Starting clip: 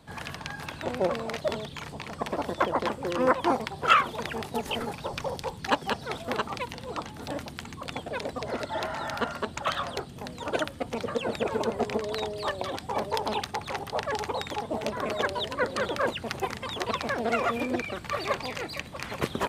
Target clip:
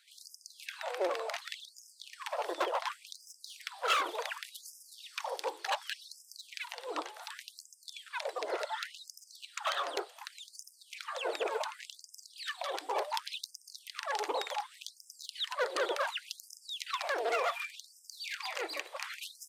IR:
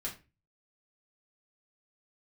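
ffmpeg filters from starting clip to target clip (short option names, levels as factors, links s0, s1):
-filter_complex "[0:a]acrossover=split=570|2700[s0][s1][s2];[s0]alimiter=level_in=1.19:limit=0.0631:level=0:latency=1:release=189,volume=0.841[s3];[s1]volume=26.6,asoftclip=hard,volume=0.0376[s4];[s3][s4][s2]amix=inputs=3:normalize=0,afftfilt=real='re*gte(b*sr/1024,290*pow(5000/290,0.5+0.5*sin(2*PI*0.68*pts/sr)))':imag='im*gte(b*sr/1024,290*pow(5000/290,0.5+0.5*sin(2*PI*0.68*pts/sr)))':win_size=1024:overlap=0.75,volume=0.794"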